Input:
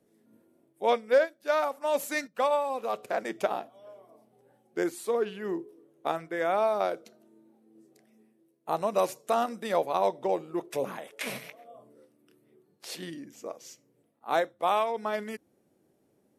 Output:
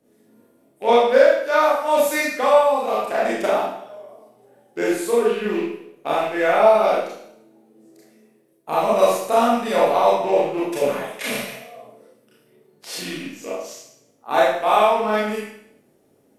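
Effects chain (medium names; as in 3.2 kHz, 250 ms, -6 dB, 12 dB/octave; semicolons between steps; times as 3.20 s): rattle on loud lows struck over -44 dBFS, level -34 dBFS; Schroeder reverb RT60 0.69 s, combs from 26 ms, DRR -7 dB; trim +2.5 dB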